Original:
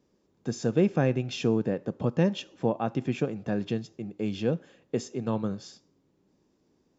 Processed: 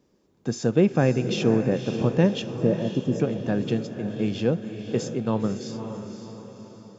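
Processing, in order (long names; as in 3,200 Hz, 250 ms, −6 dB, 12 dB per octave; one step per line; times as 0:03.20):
0:02.54–0:03.20: linear-phase brick-wall band-stop 670–4,800 Hz
feedback delay with all-pass diffusion 540 ms, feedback 47%, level −8.5 dB
level +4 dB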